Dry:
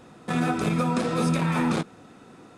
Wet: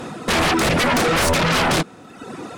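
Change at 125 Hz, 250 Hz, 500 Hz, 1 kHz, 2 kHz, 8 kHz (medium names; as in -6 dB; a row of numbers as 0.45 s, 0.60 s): +2.5 dB, +2.0 dB, +9.0 dB, +9.0 dB, +13.5 dB, +14.5 dB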